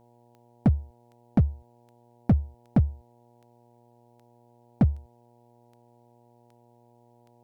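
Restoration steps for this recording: clip repair -14 dBFS; de-click; de-hum 119.3 Hz, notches 8

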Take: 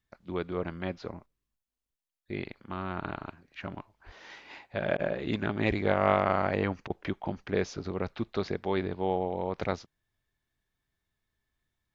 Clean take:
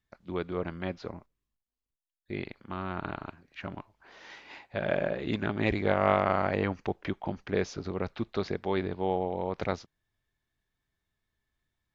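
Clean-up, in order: 4.05–4.17 s: high-pass 140 Hz 24 dB/octave; interpolate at 4.97/6.88 s, 19 ms

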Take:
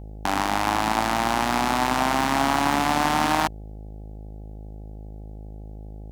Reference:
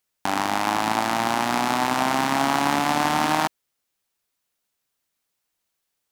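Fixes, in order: clip repair -8 dBFS; de-hum 52.5 Hz, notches 16

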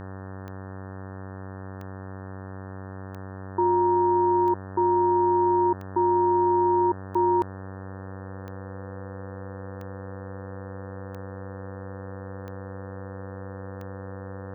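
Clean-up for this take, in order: de-click; de-hum 95.5 Hz, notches 19; band-stop 500 Hz, Q 30

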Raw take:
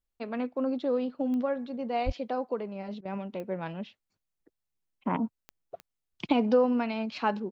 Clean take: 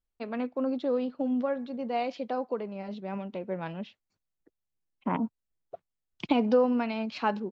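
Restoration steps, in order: de-click; de-plosive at 2.05 s; interpolate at 3.01 s, 41 ms

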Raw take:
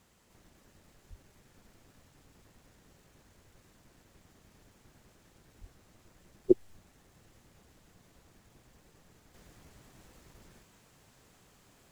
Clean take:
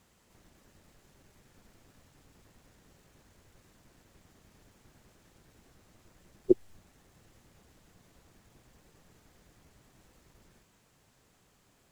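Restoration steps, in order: de-plosive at 1.09/5.60 s; gain correction -4.5 dB, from 9.34 s

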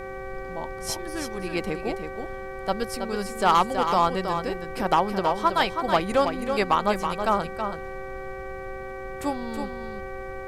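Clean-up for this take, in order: de-hum 383.2 Hz, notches 6; band-stop 530 Hz, Q 30; noise print and reduce 30 dB; inverse comb 324 ms -7 dB

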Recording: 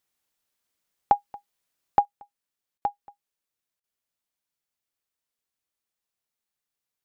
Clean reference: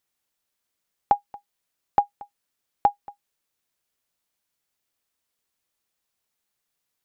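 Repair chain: interpolate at 2.78/3.80 s, 36 ms; trim 0 dB, from 2.05 s +7.5 dB

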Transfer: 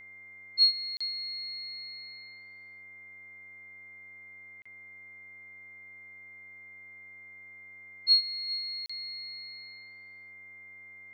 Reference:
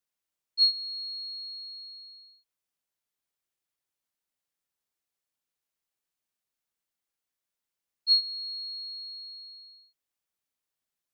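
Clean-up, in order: de-hum 96.7 Hz, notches 25; band-stop 2.1 kHz, Q 30; interpolate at 0.97/4.62/8.86 s, 35 ms; inverse comb 404 ms -18.5 dB

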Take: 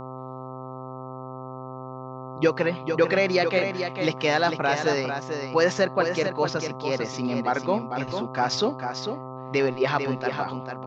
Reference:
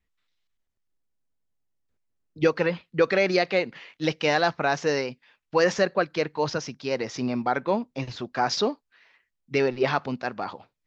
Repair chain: de-hum 129.8 Hz, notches 10; inverse comb 447 ms -7 dB

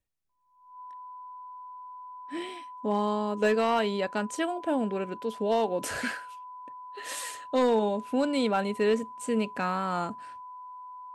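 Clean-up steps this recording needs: clip repair -17.5 dBFS; band-stop 1 kHz, Q 30

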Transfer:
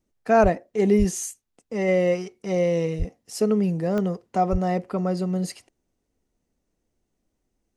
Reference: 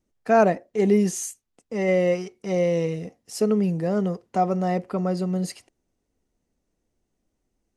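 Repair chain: de-click; de-plosive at 0.42/0.98/2.98/4.51 s

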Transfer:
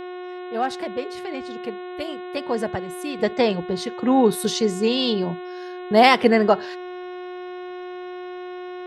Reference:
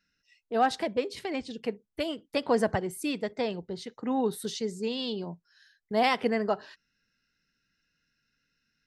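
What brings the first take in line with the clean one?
de-hum 361.8 Hz, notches 11; trim 0 dB, from 3.19 s -11 dB

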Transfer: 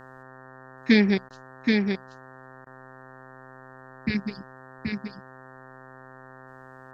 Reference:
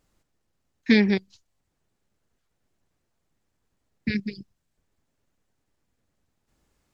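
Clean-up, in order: de-hum 130.6 Hz, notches 14; interpolate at 1.29/2.65 s, 13 ms; inverse comb 778 ms -4 dB

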